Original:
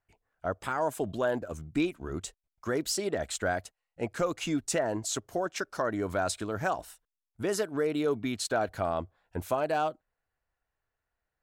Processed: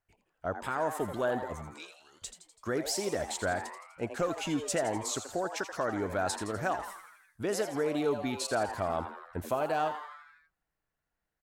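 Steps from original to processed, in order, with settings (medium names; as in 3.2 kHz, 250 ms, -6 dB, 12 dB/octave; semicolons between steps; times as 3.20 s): 1.74–2.22 s: band-pass filter 6.7 kHz, Q 1; on a send: frequency-shifting echo 83 ms, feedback 59%, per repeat +140 Hz, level -10 dB; on the sum: trim -2 dB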